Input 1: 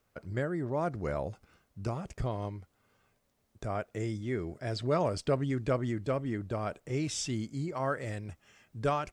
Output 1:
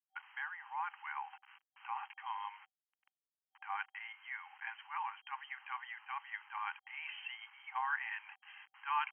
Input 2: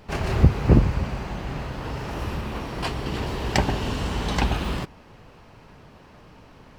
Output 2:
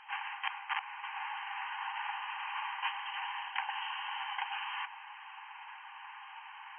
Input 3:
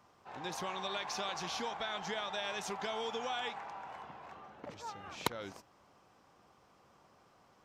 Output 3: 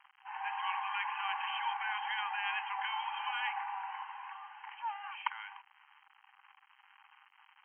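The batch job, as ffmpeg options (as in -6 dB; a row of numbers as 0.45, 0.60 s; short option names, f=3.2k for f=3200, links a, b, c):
-af "aeval=exprs='(mod(3.35*val(0)+1,2)-1)/3.35':c=same,bandreject=f=1.3k:w=5.2,areverse,acompressor=threshold=-34dB:ratio=8,areverse,acrusher=bits=9:mix=0:aa=0.000001,afftfilt=real='re*between(b*sr/4096,770,3200)':imag='im*between(b*sr/4096,770,3200)':win_size=4096:overlap=0.75,volume=7.5dB"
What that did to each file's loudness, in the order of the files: -8.5, -14.0, +2.5 LU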